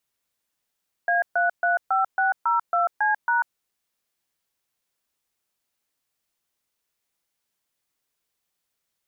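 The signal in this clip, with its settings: DTMF "A335602C#", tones 0.142 s, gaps 0.133 s, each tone -21 dBFS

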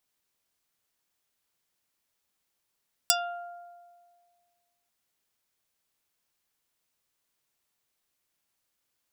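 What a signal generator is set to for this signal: plucked string F5, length 1.79 s, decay 1.86 s, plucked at 0.34, dark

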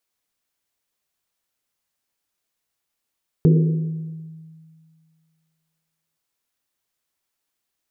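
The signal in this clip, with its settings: Risset drum length 2.72 s, pitch 160 Hz, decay 2.10 s, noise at 400 Hz, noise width 180 Hz, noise 15%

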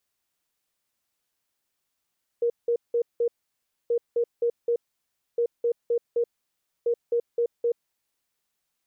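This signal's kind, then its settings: beep pattern sine 472 Hz, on 0.08 s, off 0.18 s, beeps 4, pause 0.62 s, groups 4, -20 dBFS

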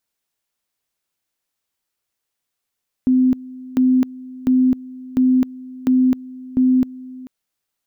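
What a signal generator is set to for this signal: two-level tone 256 Hz -11 dBFS, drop 20.5 dB, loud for 0.26 s, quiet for 0.44 s, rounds 6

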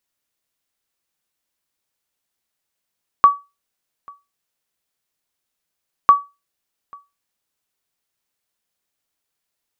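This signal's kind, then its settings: sonar ping 1140 Hz, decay 0.24 s, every 2.85 s, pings 2, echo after 0.84 s, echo -29 dB -1.5 dBFS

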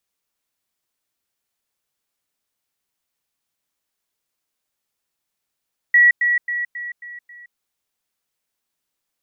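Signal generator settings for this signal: level ladder 1930 Hz -8.5 dBFS, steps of -6 dB, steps 6, 0.17 s 0.10 s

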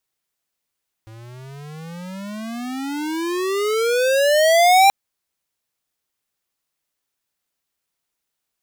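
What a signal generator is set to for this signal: gliding synth tone square, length 3.83 s, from 109 Hz, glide +34.5 st, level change +29 dB, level -11 dB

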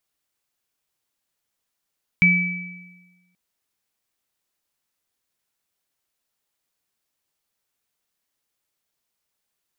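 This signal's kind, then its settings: sine partials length 1.13 s, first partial 179 Hz, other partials 2300 Hz, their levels 5 dB, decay 1.32 s, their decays 1.11 s, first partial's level -16 dB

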